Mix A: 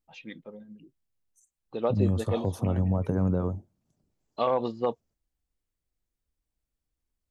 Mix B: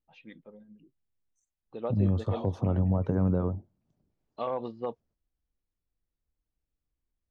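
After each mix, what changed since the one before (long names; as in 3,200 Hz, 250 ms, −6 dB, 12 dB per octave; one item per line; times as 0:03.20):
first voice −6.0 dB
master: add high-frequency loss of the air 170 metres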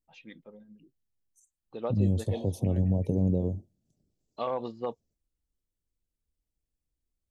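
second voice: add Butterworth band-reject 1,400 Hz, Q 0.53
master: remove high-frequency loss of the air 170 metres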